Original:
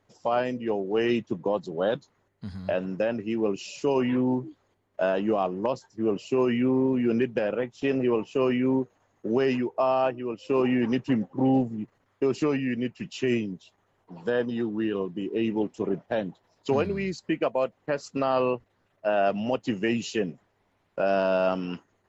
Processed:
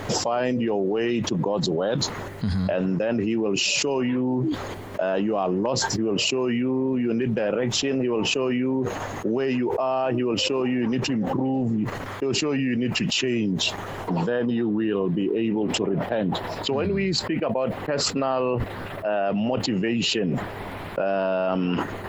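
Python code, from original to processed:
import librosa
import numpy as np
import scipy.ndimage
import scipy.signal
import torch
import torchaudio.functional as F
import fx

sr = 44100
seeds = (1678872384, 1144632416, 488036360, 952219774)

y = fx.peak_eq(x, sr, hz=6200.0, db=fx.steps((0.0, -2.5), (14.28, -13.5)), octaves=0.62)
y = fx.env_flatten(y, sr, amount_pct=100)
y = F.gain(torch.from_numpy(y), -3.5).numpy()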